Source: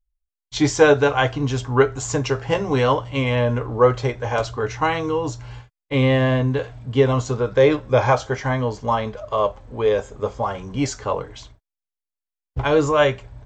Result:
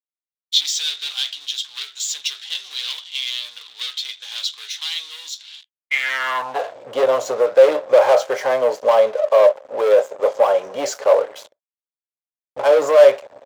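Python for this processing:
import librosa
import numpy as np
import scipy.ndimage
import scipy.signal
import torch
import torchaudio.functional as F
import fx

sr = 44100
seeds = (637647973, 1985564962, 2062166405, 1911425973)

y = fx.leveller(x, sr, passes=5)
y = fx.filter_sweep_highpass(y, sr, from_hz=3600.0, to_hz=560.0, start_s=5.61, end_s=6.75, q=6.4)
y = y * librosa.db_to_amplitude(-15.0)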